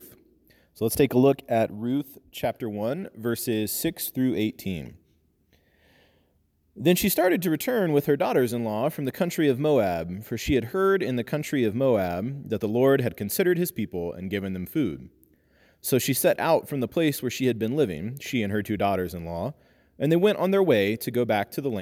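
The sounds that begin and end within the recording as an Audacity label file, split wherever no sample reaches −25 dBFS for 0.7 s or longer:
0.820000	4.800000	sound
6.850000	14.940000	sound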